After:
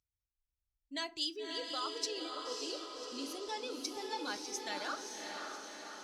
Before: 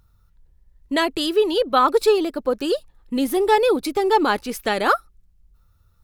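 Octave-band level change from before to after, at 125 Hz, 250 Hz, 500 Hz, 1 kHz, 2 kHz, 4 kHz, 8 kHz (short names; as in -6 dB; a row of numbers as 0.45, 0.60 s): n/a, -21.5 dB, -24.0 dB, -21.5 dB, -17.5 dB, -10.0 dB, -6.0 dB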